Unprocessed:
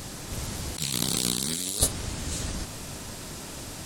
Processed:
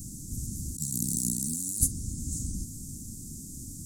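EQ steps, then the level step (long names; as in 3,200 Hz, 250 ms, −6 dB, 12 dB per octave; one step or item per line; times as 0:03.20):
elliptic band-stop filter 260–6,700 Hz, stop band 50 dB
0.0 dB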